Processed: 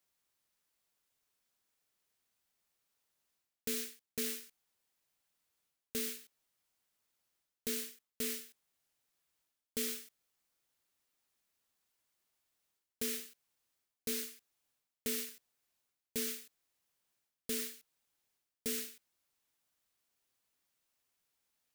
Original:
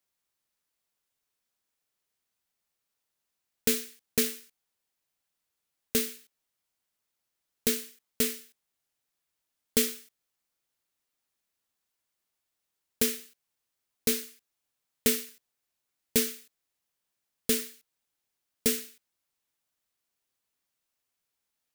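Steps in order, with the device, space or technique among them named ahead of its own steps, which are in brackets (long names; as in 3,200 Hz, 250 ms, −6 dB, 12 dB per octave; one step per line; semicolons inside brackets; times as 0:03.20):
compression on the reversed sound (reversed playback; downward compressor 4 to 1, threshold −38 dBFS, peak gain reduction 16 dB; reversed playback)
level +1 dB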